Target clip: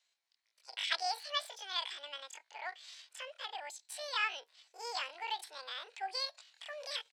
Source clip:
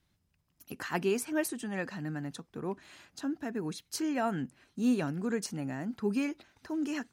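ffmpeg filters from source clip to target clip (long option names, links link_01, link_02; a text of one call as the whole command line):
ffmpeg -i in.wav -af "highpass=frequency=480:width=0.5412,highpass=frequency=480:width=1.3066,equalizer=frequency=650:width_type=q:width=4:gain=-8,equalizer=frequency=1200:width_type=q:width=4:gain=4,equalizer=frequency=2200:width_type=q:width=4:gain=7,lowpass=frequency=4000:width=0.5412,lowpass=frequency=4000:width=1.3066,asetrate=83250,aresample=44100,atempo=0.529732,volume=1dB" out.wav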